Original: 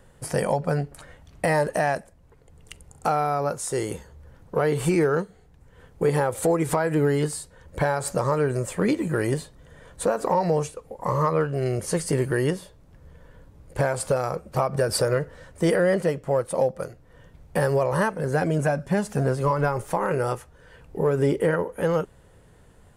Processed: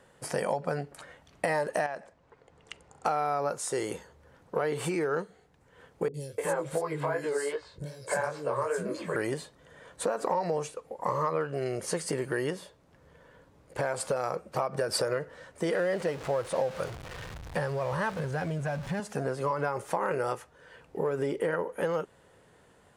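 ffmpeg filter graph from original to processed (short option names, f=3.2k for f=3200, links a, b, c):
-filter_complex "[0:a]asettb=1/sr,asplit=3[a][b][c];[a]atrim=end=1.864[d];[b]atrim=start=1.86:end=3.06,asetpts=PTS-STARTPTS,afade=t=in:d=0.004:c=qsin,afade=t=out:st=1.196:d=0.004:c=qsin,lowpass=6.5k,equalizer=f=1k:t=o:w=2.4:g=4,acompressor=threshold=-32dB:ratio=3:attack=3.2:release=140:knee=1:detection=peak[e];[c]atrim=start=3.056[f];[d][e]acrossfade=d=0.004:c1=hsin:c2=qsin[g];[g][f]acrossfade=d=0.004:c1=qsin:c2=hsin,asettb=1/sr,asplit=3[h][i][j];[h]atrim=end=6.084[k];[i]atrim=start=6.08:end=9.16,asetpts=PTS-STARTPTS,afade=t=in:d=0.004:c=qsin,afade=t=out:st=3.076:d=0.004:c=qsin,aecho=1:1:1.9:0.4,atrim=end_sample=135828,acrossover=split=320|3900[l][m][n];[n]adelay=60[o];[m]adelay=300[p];[l][p][o]amix=inputs=3:normalize=0,atrim=end_sample=135828,flanger=delay=16.5:depth=5.6:speed=2.6[q];[j]atrim=start=9.156[r];[k][q]acrossfade=d=0.004:c1=hsin:c2=qsin[s];[s][r]acrossfade=d=0.004:c1=qsin:c2=hsin,asettb=1/sr,asplit=3[t][u][v];[t]atrim=end=15.694[w];[u]atrim=start=15.69:end=19,asetpts=PTS-STARTPTS,afade=t=in:d=0.004:c=qsin,afade=t=out:st=3.306:d=0.004:c=qsin,aeval=exprs='val(0)+0.5*0.0237*sgn(val(0))':c=same,asubboost=boost=10.5:cutoff=110,acrossover=split=7800[x][y];[y]acompressor=threshold=-46dB:ratio=4:attack=1:release=60[z];[x][z]amix=inputs=2:normalize=0[aa];[v]atrim=start=18.996[ab];[w][aa]acrossfade=d=0.004:c1=hsin:c2=qsin[ac];[ac][ab]acrossfade=d=0.004:c1=qsin:c2=hsin,highshelf=f=11k:g=-12,acompressor=threshold=-23dB:ratio=6,highpass=f=370:p=1"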